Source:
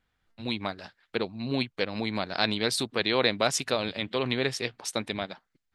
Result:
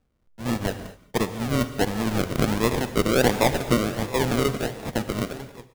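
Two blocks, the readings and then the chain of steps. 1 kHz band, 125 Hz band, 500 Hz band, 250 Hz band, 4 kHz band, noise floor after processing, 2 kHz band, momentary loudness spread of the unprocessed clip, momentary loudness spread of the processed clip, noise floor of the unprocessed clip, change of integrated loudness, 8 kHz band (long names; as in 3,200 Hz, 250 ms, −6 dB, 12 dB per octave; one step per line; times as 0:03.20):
+6.0 dB, +10.5 dB, +5.0 dB, +7.5 dB, −2.5 dB, −64 dBFS, +1.5 dB, 11 LU, 10 LU, −78 dBFS, +4.5 dB, +2.5 dB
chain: each half-wave held at its own peak
single-tap delay 944 ms −17 dB
sample-and-hold swept by an LFO 41×, swing 60% 1.4 Hz
reverb whose tail is shaped and stops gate 260 ms flat, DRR 10.5 dB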